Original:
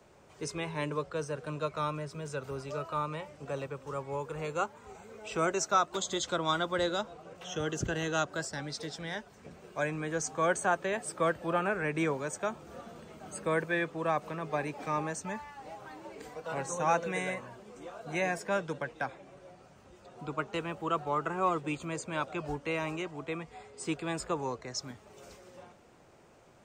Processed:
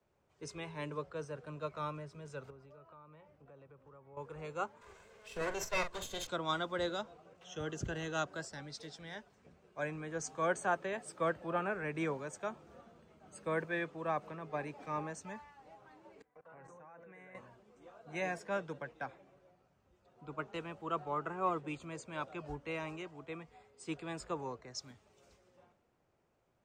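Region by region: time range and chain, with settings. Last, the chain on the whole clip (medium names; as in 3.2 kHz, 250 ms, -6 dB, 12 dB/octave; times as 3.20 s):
2.50–4.17 s: low-pass 2.1 kHz 6 dB/octave + compression 4:1, threshold -43 dBFS
4.81–6.27 s: comb filter that takes the minimum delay 1.9 ms + doubling 43 ms -8.5 dB + tape noise reduction on one side only encoder only
16.22–17.35 s: resonant high shelf 2.7 kHz -10 dB, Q 1.5 + level held to a coarse grid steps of 22 dB
whole clip: treble shelf 8.2 kHz -9 dB; three bands expanded up and down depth 40%; trim -6.5 dB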